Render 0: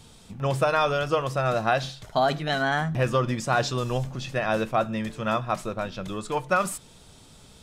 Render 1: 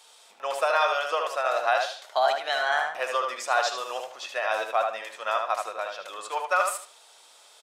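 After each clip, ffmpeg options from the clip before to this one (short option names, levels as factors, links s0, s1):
-filter_complex "[0:a]highpass=f=590:w=0.5412,highpass=f=590:w=1.3066,asplit=2[s0][s1];[s1]adelay=76,lowpass=f=3900:p=1,volume=0.631,asplit=2[s2][s3];[s3]adelay=76,lowpass=f=3900:p=1,volume=0.29,asplit=2[s4][s5];[s5]adelay=76,lowpass=f=3900:p=1,volume=0.29,asplit=2[s6][s7];[s7]adelay=76,lowpass=f=3900:p=1,volume=0.29[s8];[s2][s4][s6][s8]amix=inputs=4:normalize=0[s9];[s0][s9]amix=inputs=2:normalize=0"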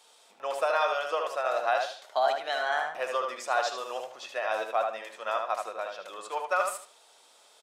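-af "lowshelf=f=480:g=9.5,volume=0.531"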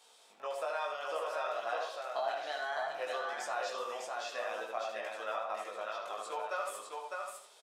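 -af "acompressor=threshold=0.0158:ratio=2,flanger=delay=17.5:depth=3:speed=0.64,aecho=1:1:604:0.668"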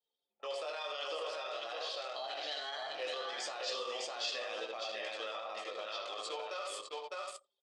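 -af "anlmdn=0.0158,alimiter=level_in=2.66:limit=0.0631:level=0:latency=1:release=24,volume=0.376,highpass=180,equalizer=f=190:t=q:w=4:g=-9,equalizer=f=680:t=q:w=4:g=-7,equalizer=f=970:t=q:w=4:g=-8,equalizer=f=1500:t=q:w=4:g=-9,equalizer=f=3200:t=q:w=4:g=7,equalizer=f=4600:t=q:w=4:g=10,lowpass=f=8500:w=0.5412,lowpass=f=8500:w=1.3066,volume=1.58"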